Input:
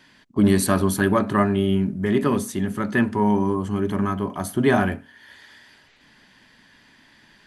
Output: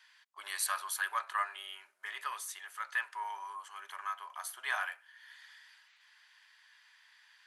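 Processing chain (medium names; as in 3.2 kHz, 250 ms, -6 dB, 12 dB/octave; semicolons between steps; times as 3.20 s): inverse Chebyshev high-pass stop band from 230 Hz, stop band 70 dB; trim -7.5 dB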